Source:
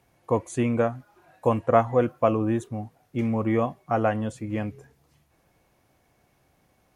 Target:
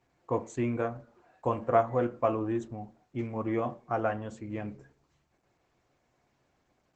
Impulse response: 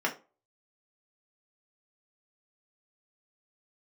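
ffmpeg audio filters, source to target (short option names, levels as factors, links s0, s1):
-filter_complex "[0:a]asplit=2[s0][s1];[1:a]atrim=start_sample=2205,asetrate=34398,aresample=44100[s2];[s1][s2]afir=irnorm=-1:irlink=0,volume=0.168[s3];[s0][s3]amix=inputs=2:normalize=0,volume=0.398" -ar 48000 -c:a libopus -b:a 12k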